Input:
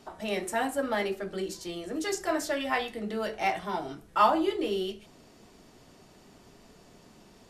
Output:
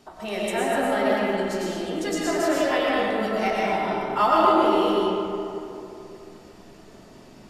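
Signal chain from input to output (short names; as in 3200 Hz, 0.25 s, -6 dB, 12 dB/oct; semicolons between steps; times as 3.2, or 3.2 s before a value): digital reverb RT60 3 s, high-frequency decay 0.45×, pre-delay 75 ms, DRR -6 dB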